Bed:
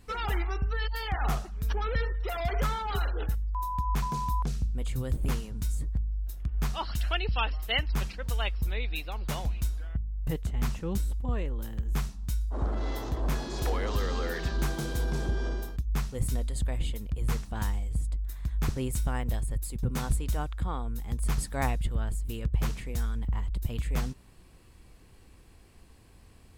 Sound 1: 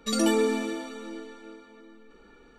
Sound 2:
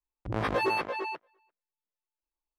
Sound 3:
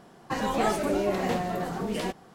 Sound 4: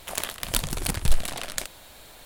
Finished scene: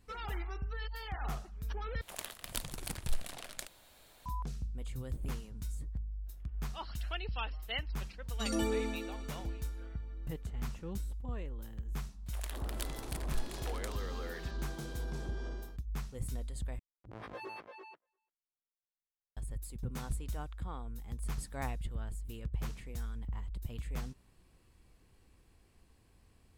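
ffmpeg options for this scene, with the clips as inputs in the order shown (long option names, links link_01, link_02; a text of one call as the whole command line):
ffmpeg -i bed.wav -i cue0.wav -i cue1.wav -i cue2.wav -i cue3.wav -filter_complex "[4:a]asplit=2[link_01][link_02];[0:a]volume=-9.5dB[link_03];[link_02]equalizer=frequency=1700:width_type=o:width=0.77:gain=2.5[link_04];[link_03]asplit=3[link_05][link_06][link_07];[link_05]atrim=end=2.014[link_08];[link_01]atrim=end=2.25,asetpts=PTS-STARTPTS,volume=-13dB[link_09];[link_06]atrim=start=4.256:end=16.794[link_10];[2:a]atrim=end=2.58,asetpts=PTS-STARTPTS,volume=-17.5dB[link_11];[link_07]atrim=start=19.366[link_12];[1:a]atrim=end=2.58,asetpts=PTS-STARTPTS,volume=-10.5dB,afade=type=in:duration=0.004:curve=hsin,afade=type=out:start_time=2.576:duration=0.004:curve=hsin,adelay=8330[link_13];[link_04]atrim=end=2.25,asetpts=PTS-STARTPTS,volume=-17dB,afade=type=in:duration=0.004:curve=hsin,afade=type=out:start_time=2.246:duration=0.004:curve=hsin,adelay=12260[link_14];[link_08][link_09]acrossfade=duration=0.004:curve1=hsin:curve2=hsin[link_15];[link_15][link_10]acrossfade=duration=0.004:curve1=hsin:curve2=hsin[link_16];[link_16][link_11]acrossfade=duration=0.004:curve1=hsin:curve2=hsin[link_17];[link_17][link_12]acrossfade=duration=0.004:curve1=hsin:curve2=hsin[link_18];[link_18][link_13][link_14]amix=inputs=3:normalize=0" out.wav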